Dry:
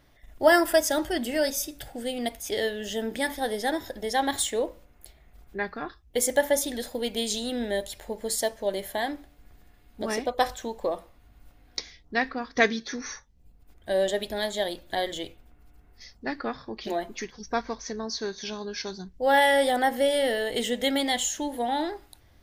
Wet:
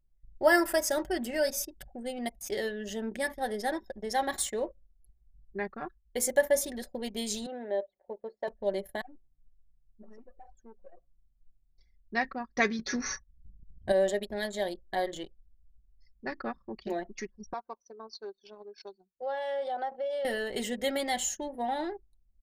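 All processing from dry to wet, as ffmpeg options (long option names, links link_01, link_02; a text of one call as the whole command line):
ffmpeg -i in.wav -filter_complex "[0:a]asettb=1/sr,asplit=3[link_01][link_02][link_03];[link_01]atrim=end=7.464[link_04];[link_02]atrim=start=7.46:end=8.48,asetpts=PTS-STARTPTS,afade=type=in:duration=0.004:curve=qsin,afade=type=out:start_time=1.016:duration=0.004:curve=qsin,highpass=580,lowpass=4900,tiltshelf=frequency=1100:gain=7,acrossover=split=3300[link_05][link_06];[link_06]acompressor=threshold=-54dB:ratio=4:attack=1:release=60[link_07];[link_05][link_07]amix=inputs=2:normalize=0[link_08];[link_03]atrim=start=8.476[link_09];[link_04][link_08]acrossfade=duration=0.004:curve1=hsin:curve2=qsin[link_10];[link_10][link_09]acrossfade=duration=0.004:curve1=qsin:curve2=hsin,asettb=1/sr,asplit=3[link_11][link_12][link_13];[link_11]atrim=end=9.014[link_14];[link_12]atrim=start=9.01:end=11.81,asetpts=PTS-STARTPTS,afade=type=in:duration=0.004:curve=qsin,afade=type=out:start_time=2.796:duration=0.004:curve=qsin,aeval=exprs='(tanh(89.1*val(0)+0.4)-tanh(0.4))/89.1':channel_layout=same,aeval=exprs='val(0)+0.001*(sin(2*PI*60*n/s)+sin(2*PI*2*60*n/s)/2+sin(2*PI*3*60*n/s)/3+sin(2*PI*4*60*n/s)/4+sin(2*PI*5*60*n/s)/5)':channel_layout=same,flanger=delay=6.1:depth=3.9:regen=1:speed=1.4:shape=triangular[link_15];[link_13]atrim=start=11.806[link_16];[link_14][link_15]acrossfade=duration=0.004:curve1=hsin:curve2=qsin[link_17];[link_17][link_16]acrossfade=duration=0.004:curve1=qsin:curve2=hsin,asettb=1/sr,asplit=3[link_18][link_19][link_20];[link_18]atrim=end=12.794[link_21];[link_19]atrim=start=12.79:end=13.92,asetpts=PTS-STARTPTS,afade=type=in:duration=0.004:curve=qsin,afade=type=out:start_time=1.126:duration=0.004:curve=qsin,equalizer=frequency=99:width_type=o:width=0.83:gain=13,acontrast=59[link_22];[link_20]atrim=start=13.916[link_23];[link_21][link_22]acrossfade=duration=0.004:curve1=hsin:curve2=qsin[link_24];[link_24][link_23]acrossfade=duration=0.004:curve1=qsin:curve2=hsin,asettb=1/sr,asplit=3[link_25][link_26][link_27];[link_25]atrim=end=17.534[link_28];[link_26]atrim=start=17.53:end=20.25,asetpts=PTS-STARTPTS,afade=type=in:duration=0.004:curve=qsin,afade=type=out:start_time=2.716:duration=0.004:curve=qsin,equalizer=frequency=1900:width_type=o:width=0.68:gain=-11.5,acompressor=threshold=-24dB:ratio=6:attack=3.2:release=140:knee=1:detection=peak,highpass=530,lowpass=4000[link_29];[link_27]atrim=start=20.246[link_30];[link_28][link_29]acrossfade=duration=0.004:curve1=hsin:curve2=qsin[link_31];[link_31][link_30]acrossfade=duration=0.004:curve1=qsin:curve2=hsin,anlmdn=2.51,equalizer=frequency=3400:width_type=o:width=0.37:gain=-7.5,aecho=1:1:5.3:0.48,volume=-4.5dB" out.wav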